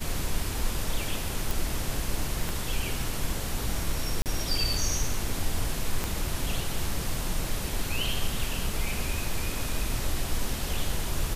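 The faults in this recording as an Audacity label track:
1.510000	1.510000	pop
2.490000	2.490000	pop
4.220000	4.260000	gap 38 ms
6.040000	6.040000	pop -14 dBFS

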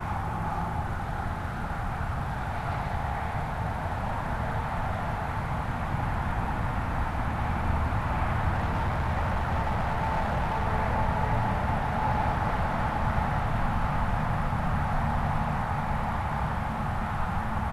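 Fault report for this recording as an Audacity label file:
8.530000	10.670000	clipped -23 dBFS

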